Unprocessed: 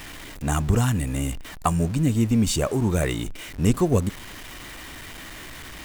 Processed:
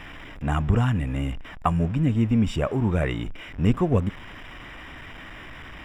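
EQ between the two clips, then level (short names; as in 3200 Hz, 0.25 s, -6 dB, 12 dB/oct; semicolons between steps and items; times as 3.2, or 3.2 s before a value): polynomial smoothing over 25 samples; bell 370 Hz -3 dB 0.77 oct; 0.0 dB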